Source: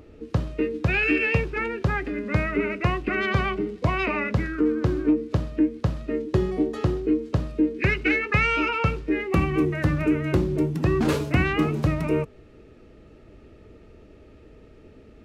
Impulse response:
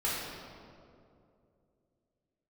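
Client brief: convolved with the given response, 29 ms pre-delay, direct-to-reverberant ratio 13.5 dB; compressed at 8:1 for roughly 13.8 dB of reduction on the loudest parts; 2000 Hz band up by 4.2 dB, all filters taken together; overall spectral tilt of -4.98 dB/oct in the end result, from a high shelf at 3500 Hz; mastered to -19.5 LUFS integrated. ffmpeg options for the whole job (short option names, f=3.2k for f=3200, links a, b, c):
-filter_complex "[0:a]equalizer=f=2k:t=o:g=3.5,highshelf=f=3.5k:g=5,acompressor=threshold=-31dB:ratio=8,asplit=2[a][b];[1:a]atrim=start_sample=2205,adelay=29[c];[b][c]afir=irnorm=-1:irlink=0,volume=-21.5dB[d];[a][d]amix=inputs=2:normalize=0,volume=15dB"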